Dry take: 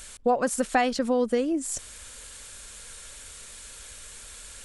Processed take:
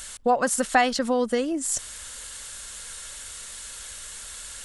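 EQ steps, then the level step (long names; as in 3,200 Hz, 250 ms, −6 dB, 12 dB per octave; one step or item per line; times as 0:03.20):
low-shelf EQ 220 Hz −6 dB
parametric band 390 Hz −5.5 dB 1.3 octaves
notch filter 2,400 Hz, Q 12
+5.5 dB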